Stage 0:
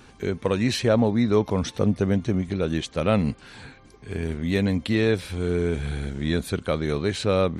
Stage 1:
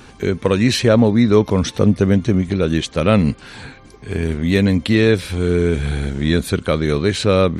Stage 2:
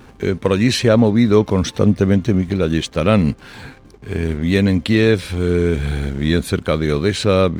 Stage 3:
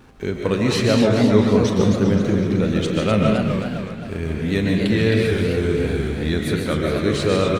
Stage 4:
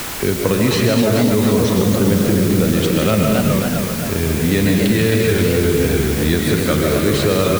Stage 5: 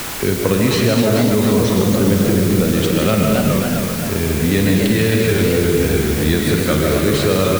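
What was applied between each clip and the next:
dynamic bell 770 Hz, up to -5 dB, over -40 dBFS, Q 2.1; trim +8 dB
hysteresis with a dead band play -40 dBFS
doubling 38 ms -12.5 dB; algorithmic reverb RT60 0.92 s, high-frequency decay 0.55×, pre-delay 100 ms, DRR 0.5 dB; modulated delay 258 ms, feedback 52%, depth 203 cents, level -6.5 dB; trim -6 dB
peak limiter -11.5 dBFS, peak gain reduction 9.5 dB; added noise white -34 dBFS; three bands compressed up and down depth 40%; trim +5 dB
flutter echo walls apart 9 m, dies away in 0.28 s

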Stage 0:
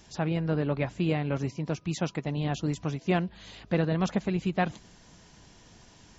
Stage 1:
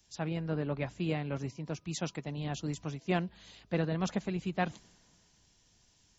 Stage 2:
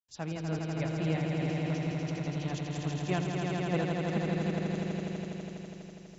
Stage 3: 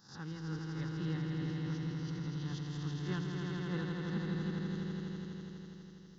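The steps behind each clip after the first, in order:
treble shelf 4.6 kHz +6 dB; three bands expanded up and down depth 40%; trim -6 dB
trance gate ".xxxxxx..xxxxxx." 180 bpm; on a send: echo with a slow build-up 82 ms, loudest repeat 5, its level -5 dB; on the sum: trim -2 dB
reverse spectral sustain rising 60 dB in 0.46 s; static phaser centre 2.4 kHz, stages 6; trim -5 dB

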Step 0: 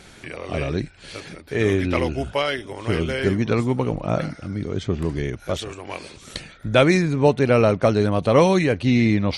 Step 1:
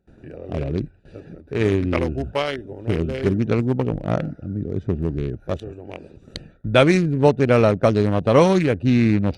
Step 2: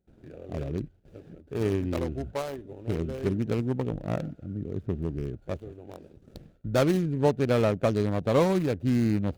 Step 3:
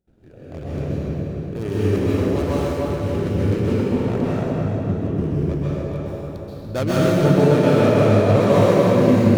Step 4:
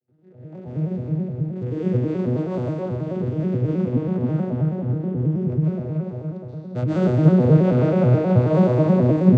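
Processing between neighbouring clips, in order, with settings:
local Wiener filter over 41 samples; gate with hold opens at -38 dBFS; trim +1.5 dB
median filter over 25 samples; treble shelf 5.6 kHz +6.5 dB; trim -7.5 dB
filtered feedback delay 289 ms, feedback 52%, low-pass 2.6 kHz, level -3 dB; plate-style reverb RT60 2.3 s, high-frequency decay 1×, pre-delay 115 ms, DRR -8.5 dB; trim -1.5 dB
vocoder on a broken chord major triad, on B2, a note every 107 ms

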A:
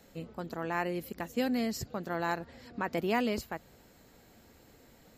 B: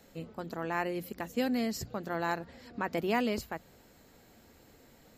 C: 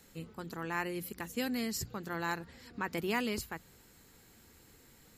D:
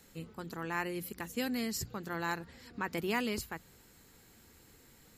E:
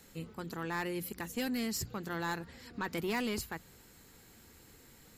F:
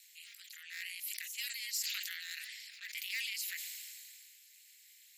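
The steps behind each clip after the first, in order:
hum notches 60/120/180 Hz
fifteen-band graphic EQ 250 Hz -4 dB, 630 Hz -11 dB, 10 kHz +9 dB
no audible change
saturation -30 dBFS, distortion -14 dB; trim +2 dB
ring modulator 120 Hz; steep high-pass 2 kHz 48 dB/octave; decay stretcher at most 23 dB/s; trim +4 dB

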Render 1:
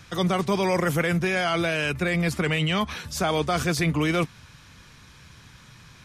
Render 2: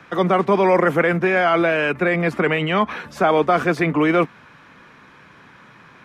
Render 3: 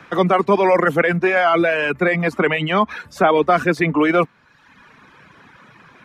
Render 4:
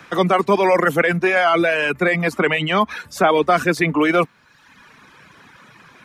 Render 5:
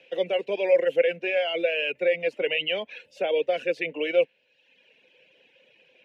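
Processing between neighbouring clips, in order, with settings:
three-band isolator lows -23 dB, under 200 Hz, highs -21 dB, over 2.3 kHz; trim +9 dB
reverb removal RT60 1 s; trim +2.5 dB
treble shelf 4.3 kHz +11 dB; trim -1 dB
dynamic bell 1.6 kHz, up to +6 dB, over -32 dBFS, Q 1.5; two resonant band-passes 1.2 kHz, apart 2.4 oct

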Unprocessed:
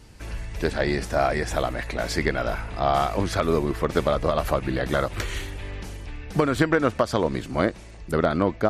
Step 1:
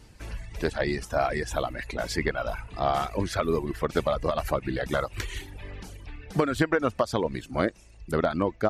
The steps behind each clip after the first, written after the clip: reverb removal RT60 0.96 s; trim -2.5 dB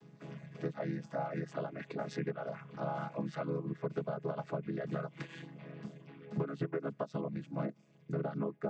vocoder on a held chord minor triad, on C#3; treble shelf 6 kHz -5.5 dB; compression 3:1, threshold -34 dBFS, peak gain reduction 13.5 dB; trim -1.5 dB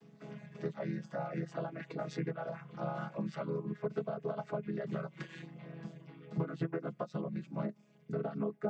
flange 0.24 Hz, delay 4.4 ms, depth 2 ms, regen +30%; trim +3 dB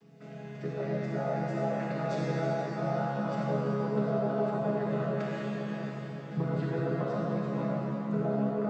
reverberation RT60 5.2 s, pre-delay 28 ms, DRR -7 dB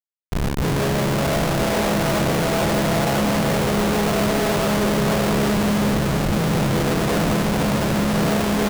spectral sustain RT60 2.29 s; Schmitt trigger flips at -35 dBFS; delay 1007 ms -7.5 dB; trim +8.5 dB

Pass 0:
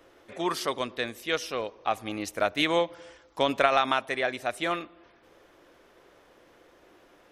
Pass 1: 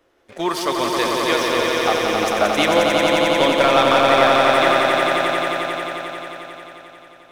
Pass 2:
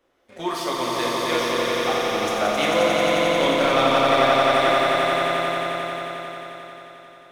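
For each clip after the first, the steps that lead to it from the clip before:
waveshaping leveller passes 2; echo with a slow build-up 89 ms, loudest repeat 5, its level -4 dB; trim -1 dB
reverberation, pre-delay 3 ms, DRR -1.5 dB; trim -7.5 dB

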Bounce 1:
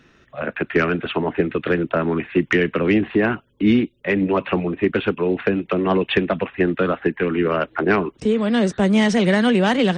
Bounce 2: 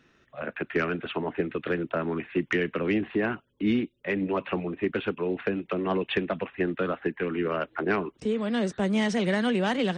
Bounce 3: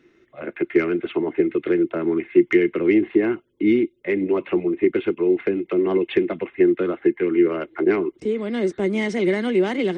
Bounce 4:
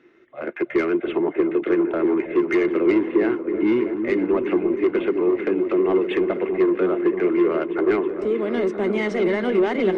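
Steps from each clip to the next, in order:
bass shelf 120 Hz -4.5 dB; trim -8 dB
small resonant body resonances 350/2100 Hz, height 17 dB, ringing for 45 ms; trim -2 dB
overdrive pedal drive 19 dB, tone 1.1 kHz, clips at -4 dBFS; delay with an opening low-pass 321 ms, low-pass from 400 Hz, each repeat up 1 oct, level -6 dB; trim -5 dB

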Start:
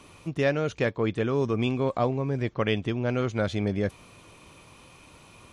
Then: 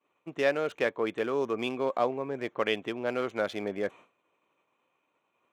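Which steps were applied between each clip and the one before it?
local Wiener filter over 9 samples; high-pass 380 Hz 12 dB/octave; expander -43 dBFS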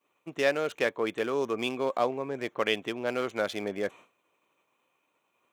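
treble shelf 4.2 kHz +9 dB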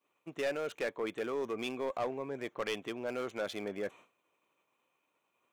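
saturation -22.5 dBFS, distortion -12 dB; trim -4.5 dB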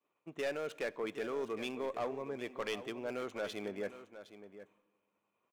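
delay 763 ms -12.5 dB; reverberation RT60 1.4 s, pre-delay 5 ms, DRR 18.5 dB; tape noise reduction on one side only decoder only; trim -2.5 dB

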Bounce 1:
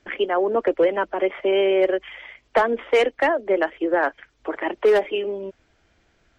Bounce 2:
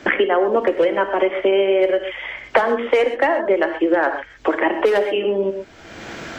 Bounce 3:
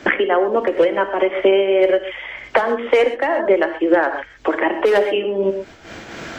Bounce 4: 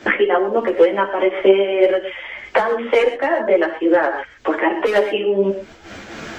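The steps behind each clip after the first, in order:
gated-style reverb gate 150 ms flat, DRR 7.5 dB; three bands compressed up and down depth 100%; trim +2 dB
random flutter of the level, depth 60%; trim +4.5 dB
three-phase chorus; trim +3 dB

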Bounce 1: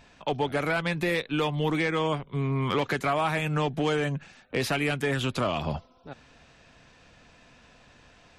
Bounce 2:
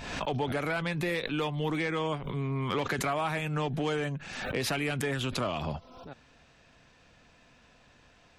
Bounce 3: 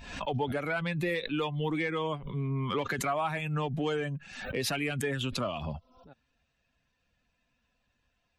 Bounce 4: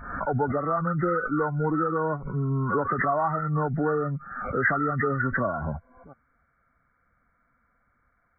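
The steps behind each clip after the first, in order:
swell ahead of each attack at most 46 dB/s; trim -4.5 dB
expander on every frequency bin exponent 1.5; trim +2 dB
knee-point frequency compression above 1.1 kHz 4:1; trim +5.5 dB

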